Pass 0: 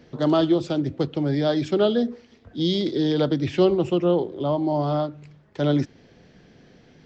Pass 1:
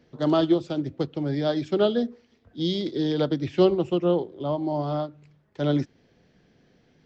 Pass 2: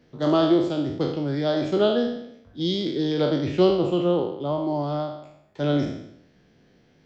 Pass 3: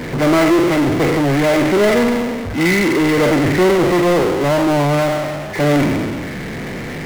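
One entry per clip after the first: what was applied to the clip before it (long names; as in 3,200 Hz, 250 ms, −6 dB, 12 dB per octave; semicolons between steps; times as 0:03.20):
expander for the loud parts 1.5 to 1, over −32 dBFS
peak hold with a decay on every bin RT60 0.76 s
hearing-aid frequency compression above 1,700 Hz 4 to 1; power curve on the samples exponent 0.35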